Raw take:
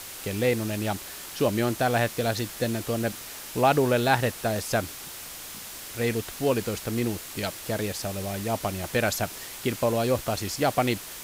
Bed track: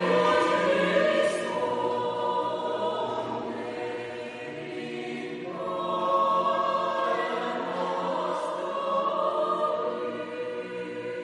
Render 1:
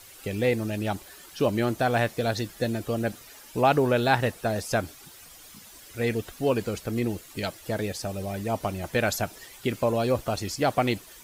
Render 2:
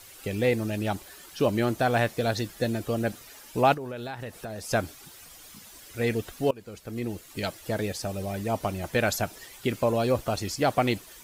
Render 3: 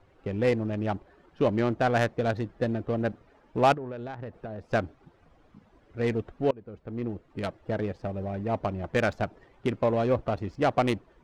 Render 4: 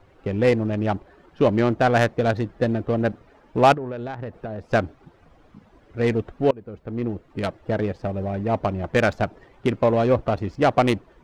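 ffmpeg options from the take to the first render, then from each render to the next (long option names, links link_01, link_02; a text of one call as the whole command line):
ffmpeg -i in.wav -af "afftdn=noise_reduction=12:noise_floor=-40" out.wav
ffmpeg -i in.wav -filter_complex "[0:a]asplit=3[link_01][link_02][link_03];[link_01]afade=type=out:start_time=3.73:duration=0.02[link_04];[link_02]acompressor=threshold=-34dB:ratio=5:attack=3.2:release=140:knee=1:detection=peak,afade=type=in:start_time=3.73:duration=0.02,afade=type=out:start_time=4.68:duration=0.02[link_05];[link_03]afade=type=in:start_time=4.68:duration=0.02[link_06];[link_04][link_05][link_06]amix=inputs=3:normalize=0,asplit=2[link_07][link_08];[link_07]atrim=end=6.51,asetpts=PTS-STARTPTS,afade=type=out:start_time=6.506:duration=0.004:curve=hsin:silence=0.0668344[link_09];[link_08]atrim=start=6.51,asetpts=PTS-STARTPTS,afade=type=in:duration=0.95:silence=0.0668344[link_10];[link_09][link_10]concat=n=2:v=0:a=1" out.wav
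ffmpeg -i in.wav -af "adynamicsmooth=sensitivity=1.5:basefreq=910" out.wav
ffmpeg -i in.wav -af "volume=6dB" out.wav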